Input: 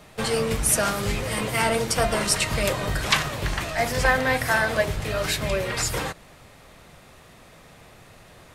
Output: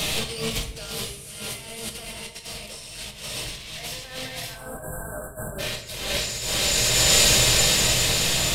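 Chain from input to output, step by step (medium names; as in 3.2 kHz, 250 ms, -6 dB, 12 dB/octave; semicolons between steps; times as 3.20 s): resonant high shelf 2.2 kHz +11 dB, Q 1.5; modulation noise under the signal 29 dB; on a send: echo that smears into a reverb 519 ms, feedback 54%, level -4 dB; on the sum: compressor with a negative ratio -30 dBFS, ratio -0.5; in parallel at -1 dB: peak limiter -24 dBFS, peak gain reduction 17 dB; on the sum: spectral selection erased 4.54–5.59 s, 1.7–7.4 kHz; simulated room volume 210 m³, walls mixed, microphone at 0.63 m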